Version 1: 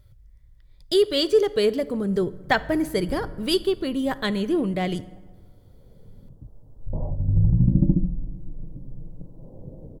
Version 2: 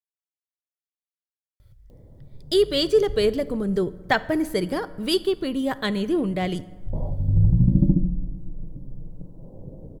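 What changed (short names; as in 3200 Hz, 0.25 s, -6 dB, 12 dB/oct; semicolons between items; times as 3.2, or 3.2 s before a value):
speech: entry +1.60 s; background: send +9.5 dB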